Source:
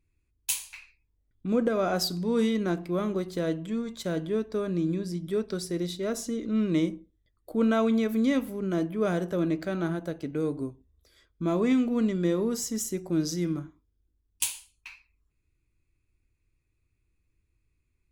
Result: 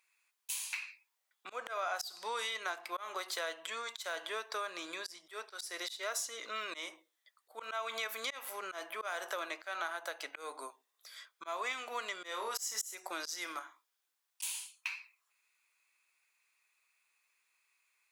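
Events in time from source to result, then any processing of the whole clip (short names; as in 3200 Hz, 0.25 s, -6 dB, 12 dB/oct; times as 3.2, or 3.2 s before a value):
12.28–12.95 flutter echo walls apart 4.8 m, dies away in 0.24 s
whole clip: HPF 820 Hz 24 dB/oct; auto swell 0.248 s; compressor 4:1, threshold -47 dBFS; gain +11 dB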